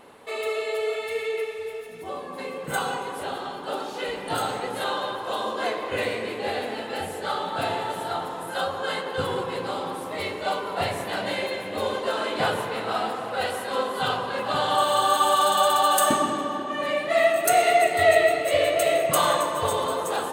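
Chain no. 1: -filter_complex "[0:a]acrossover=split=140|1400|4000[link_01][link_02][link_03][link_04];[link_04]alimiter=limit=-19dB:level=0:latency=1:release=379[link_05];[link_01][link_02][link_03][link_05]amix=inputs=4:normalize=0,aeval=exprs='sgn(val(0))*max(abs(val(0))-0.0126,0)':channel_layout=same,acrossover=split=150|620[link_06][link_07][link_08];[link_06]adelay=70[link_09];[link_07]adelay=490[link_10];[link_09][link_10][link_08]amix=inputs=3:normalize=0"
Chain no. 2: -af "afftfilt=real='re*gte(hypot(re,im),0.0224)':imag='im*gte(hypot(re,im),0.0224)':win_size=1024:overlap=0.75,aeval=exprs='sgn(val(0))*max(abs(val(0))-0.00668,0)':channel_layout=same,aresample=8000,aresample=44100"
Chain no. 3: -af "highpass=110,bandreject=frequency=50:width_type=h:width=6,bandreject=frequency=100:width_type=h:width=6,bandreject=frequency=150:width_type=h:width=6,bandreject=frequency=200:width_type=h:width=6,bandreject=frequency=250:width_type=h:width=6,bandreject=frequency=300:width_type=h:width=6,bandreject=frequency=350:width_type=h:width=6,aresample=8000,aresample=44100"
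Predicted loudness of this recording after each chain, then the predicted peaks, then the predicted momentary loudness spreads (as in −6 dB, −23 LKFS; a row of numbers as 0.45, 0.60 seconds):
−28.0, −26.0, −25.5 LKFS; −9.5, −7.0, −6.5 dBFS; 13, 14, 12 LU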